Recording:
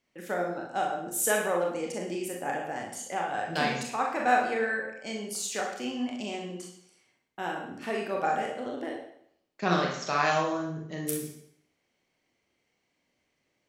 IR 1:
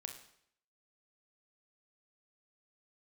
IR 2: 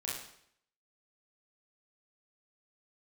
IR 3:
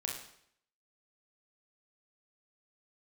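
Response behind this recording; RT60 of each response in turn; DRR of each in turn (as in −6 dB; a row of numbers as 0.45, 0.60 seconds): 3; 0.70, 0.65, 0.65 seconds; 4.5, −6.0, −1.0 decibels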